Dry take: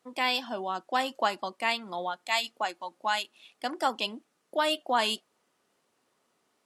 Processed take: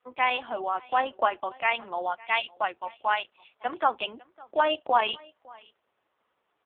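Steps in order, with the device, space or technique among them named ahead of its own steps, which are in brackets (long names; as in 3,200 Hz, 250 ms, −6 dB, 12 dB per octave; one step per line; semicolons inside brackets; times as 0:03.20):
satellite phone (band-pass filter 400–3,000 Hz; single-tap delay 556 ms −24 dB; level +5 dB; AMR narrowband 4.75 kbit/s 8,000 Hz)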